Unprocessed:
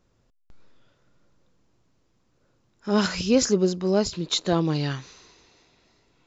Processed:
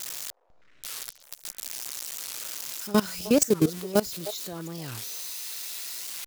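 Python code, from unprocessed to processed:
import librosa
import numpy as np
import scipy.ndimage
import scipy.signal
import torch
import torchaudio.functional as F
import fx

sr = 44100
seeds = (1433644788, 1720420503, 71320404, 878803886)

p1 = x + 0.5 * 10.0 ** (-17.0 / 20.0) * np.diff(np.sign(x), prepend=np.sign(x[:1]))
p2 = fx.level_steps(p1, sr, step_db=19)
p3 = p2 + fx.echo_stepped(p2, sr, ms=308, hz=620.0, octaves=1.4, feedback_pct=70, wet_db=-11.0, dry=0)
p4 = fx.record_warp(p3, sr, rpm=45.0, depth_cents=250.0)
y = p4 * 10.0 ** (1.5 / 20.0)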